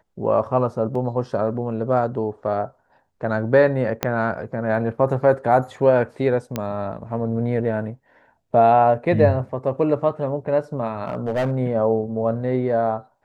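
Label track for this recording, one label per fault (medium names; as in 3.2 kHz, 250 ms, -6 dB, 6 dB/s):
0.950000	0.950000	dropout 3.8 ms
4.030000	4.030000	pop -5 dBFS
6.560000	6.560000	pop -10 dBFS
11.050000	11.560000	clipped -18 dBFS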